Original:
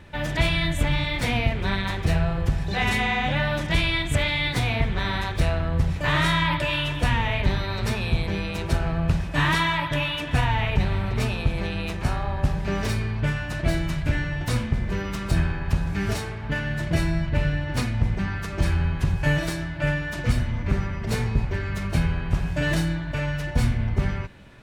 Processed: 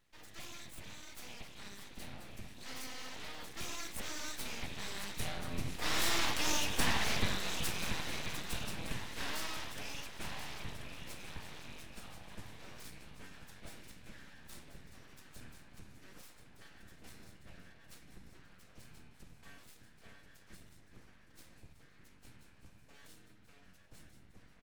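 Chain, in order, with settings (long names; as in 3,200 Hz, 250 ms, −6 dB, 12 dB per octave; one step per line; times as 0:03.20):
source passing by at 0:06.79, 13 m/s, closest 10 metres
first-order pre-emphasis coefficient 0.8
on a send: repeating echo 1,035 ms, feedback 50%, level −10 dB
on the sum: full-wave rectification
level +5.5 dB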